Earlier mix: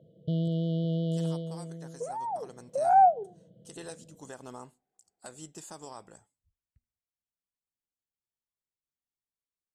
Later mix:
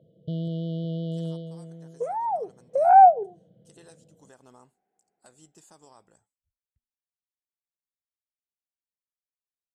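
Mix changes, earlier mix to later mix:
speech -8.5 dB; second sound +7.0 dB; reverb: off

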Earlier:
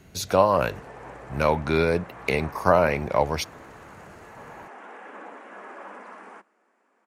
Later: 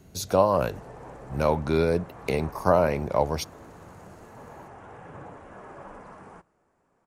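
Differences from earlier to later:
background: remove steep high-pass 200 Hz 96 dB/octave; master: add peaking EQ 2.1 kHz -8.5 dB 1.7 oct

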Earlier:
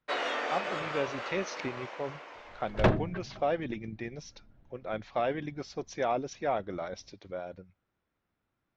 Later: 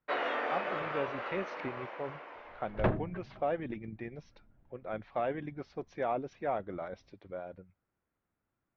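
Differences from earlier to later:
speech -3.0 dB; second sound -5.0 dB; master: add low-pass 2.3 kHz 12 dB/octave

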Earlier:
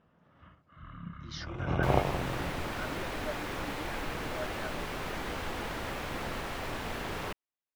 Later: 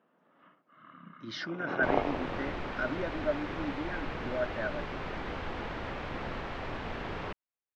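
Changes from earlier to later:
speech +9.0 dB; first sound: add high-pass 230 Hz 24 dB/octave; master: add distance through air 200 m

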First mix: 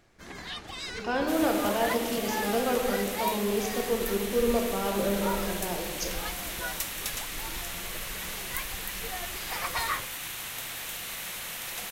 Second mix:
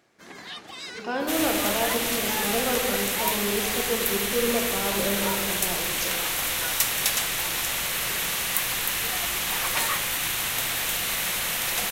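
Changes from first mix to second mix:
first sound: add high-pass 180 Hz 12 dB/octave; second sound +10.0 dB

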